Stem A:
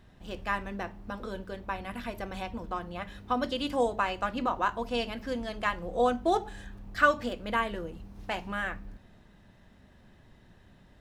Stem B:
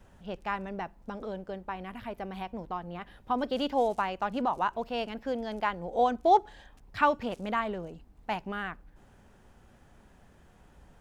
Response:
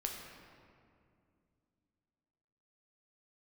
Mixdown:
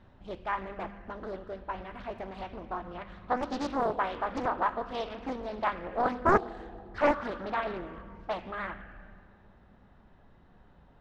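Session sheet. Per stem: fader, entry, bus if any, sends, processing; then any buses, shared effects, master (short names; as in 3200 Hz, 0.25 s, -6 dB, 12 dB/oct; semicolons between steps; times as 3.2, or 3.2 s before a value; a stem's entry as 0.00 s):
-5.0 dB, 0.00 s, send -6 dB, auto duck -9 dB, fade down 0.35 s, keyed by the second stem
-3.5 dB, 0.00 s, no send, resonant high shelf 1900 Hz -13 dB, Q 1.5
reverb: on, RT60 2.4 s, pre-delay 7 ms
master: LPF 4100 Hz 12 dB/oct; Doppler distortion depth 0.98 ms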